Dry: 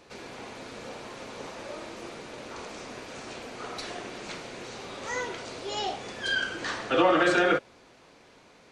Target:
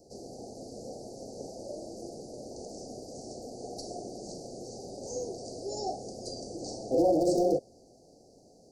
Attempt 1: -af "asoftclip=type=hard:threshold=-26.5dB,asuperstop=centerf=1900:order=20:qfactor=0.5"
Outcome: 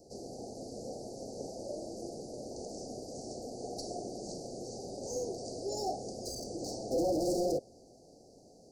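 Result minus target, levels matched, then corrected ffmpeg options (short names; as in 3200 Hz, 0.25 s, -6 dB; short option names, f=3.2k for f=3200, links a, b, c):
hard clip: distortion +10 dB
-af "asoftclip=type=hard:threshold=-17.5dB,asuperstop=centerf=1900:order=20:qfactor=0.5"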